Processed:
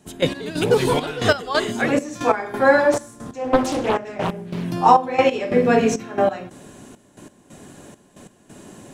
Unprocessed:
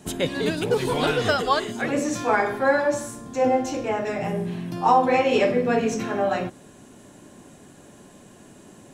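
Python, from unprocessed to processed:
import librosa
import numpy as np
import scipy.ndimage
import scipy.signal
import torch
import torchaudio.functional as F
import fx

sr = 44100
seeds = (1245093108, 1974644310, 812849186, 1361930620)

y = fx.step_gate(x, sr, bpm=136, pattern='..x..xxxx', floor_db=-12.0, edge_ms=4.5)
y = fx.doppler_dist(y, sr, depth_ms=0.81, at=(2.92, 4.64))
y = y * 10.0 ** (5.5 / 20.0)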